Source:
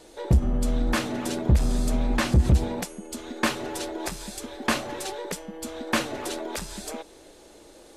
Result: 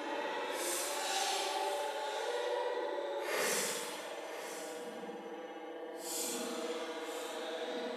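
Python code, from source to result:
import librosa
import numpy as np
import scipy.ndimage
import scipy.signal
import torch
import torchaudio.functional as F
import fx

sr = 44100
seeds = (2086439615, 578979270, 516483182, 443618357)

y = fx.paulstretch(x, sr, seeds[0], factor=8.8, window_s=0.05, from_s=4.93)
y = fx.add_hum(y, sr, base_hz=60, snr_db=20)
y = scipy.signal.sosfilt(scipy.signal.butter(2, 480.0, 'highpass', fs=sr, output='sos'), y)
y = y + 10.0 ** (-13.5 / 20.0) * np.pad(y, (int(999 * sr / 1000.0), 0))[:len(y)]
y = fx.rev_spring(y, sr, rt60_s=1.7, pass_ms=(60,), chirp_ms=25, drr_db=-0.5)
y = y * librosa.db_to_amplitude(-4.0)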